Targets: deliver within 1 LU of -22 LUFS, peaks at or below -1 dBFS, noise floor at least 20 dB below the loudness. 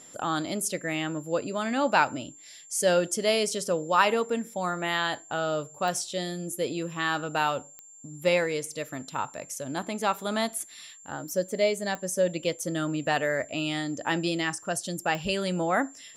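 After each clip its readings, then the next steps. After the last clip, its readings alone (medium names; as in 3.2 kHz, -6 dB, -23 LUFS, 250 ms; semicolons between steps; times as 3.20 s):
clicks found 4; steady tone 7.3 kHz; tone level -48 dBFS; loudness -28.0 LUFS; peak level -8.0 dBFS; loudness target -22.0 LUFS
-> de-click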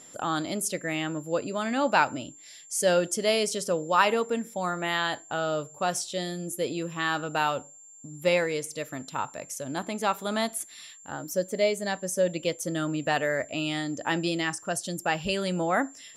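clicks found 0; steady tone 7.3 kHz; tone level -48 dBFS
-> band-stop 7.3 kHz, Q 30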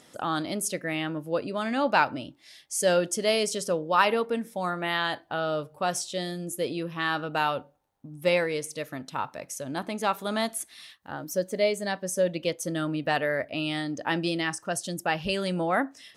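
steady tone not found; loudness -28.5 LUFS; peak level -8.0 dBFS; loudness target -22.0 LUFS
-> trim +6.5 dB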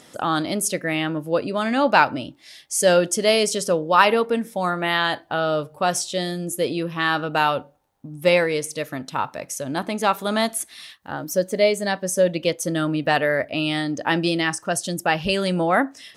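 loudness -22.0 LUFS; peak level -1.5 dBFS; noise floor -51 dBFS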